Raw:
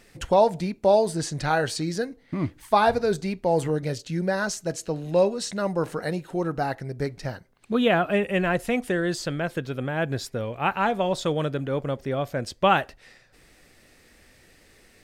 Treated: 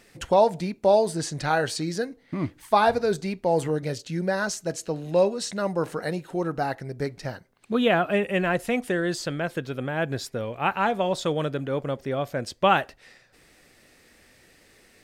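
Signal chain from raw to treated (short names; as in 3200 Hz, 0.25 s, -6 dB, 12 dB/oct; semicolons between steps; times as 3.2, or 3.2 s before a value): low shelf 79 Hz -8.5 dB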